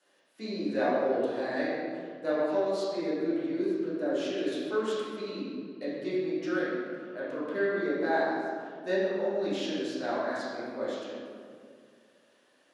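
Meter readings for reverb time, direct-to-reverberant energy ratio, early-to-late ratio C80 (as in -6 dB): 2.1 s, -11.0 dB, -0.5 dB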